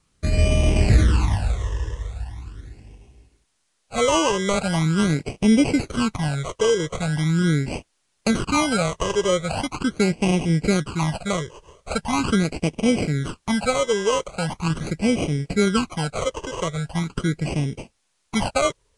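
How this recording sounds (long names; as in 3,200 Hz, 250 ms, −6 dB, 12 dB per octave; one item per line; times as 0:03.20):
aliases and images of a low sample rate 1,800 Hz, jitter 0%
phaser sweep stages 12, 0.41 Hz, lowest notch 230–1,400 Hz
a quantiser's noise floor 12 bits, dither triangular
Ogg Vorbis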